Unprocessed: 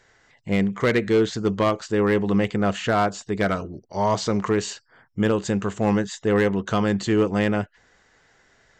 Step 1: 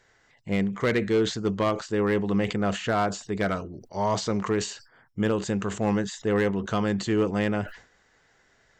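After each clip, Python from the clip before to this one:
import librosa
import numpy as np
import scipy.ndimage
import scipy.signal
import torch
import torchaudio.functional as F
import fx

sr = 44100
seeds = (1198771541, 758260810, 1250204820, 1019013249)

y = fx.sustainer(x, sr, db_per_s=130.0)
y = F.gain(torch.from_numpy(y), -4.0).numpy()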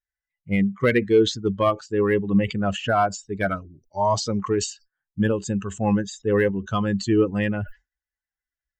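y = fx.bin_expand(x, sr, power=2.0)
y = F.gain(torch.from_numpy(y), 8.0).numpy()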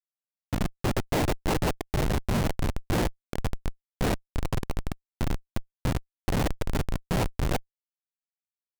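y = fx.echo_stepped(x, sr, ms=329, hz=470.0, octaves=0.7, feedback_pct=70, wet_db=-1.5)
y = fx.noise_vocoder(y, sr, seeds[0], bands=4)
y = fx.schmitt(y, sr, flips_db=-15.0)
y = F.gain(torch.from_numpy(y), -1.5).numpy()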